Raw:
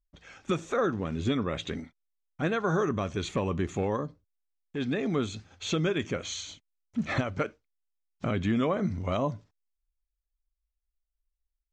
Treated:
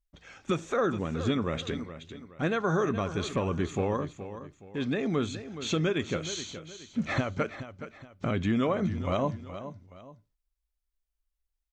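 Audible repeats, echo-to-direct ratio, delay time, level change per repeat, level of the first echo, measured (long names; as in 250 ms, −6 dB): 2, −11.5 dB, 421 ms, −8.5 dB, −12.0 dB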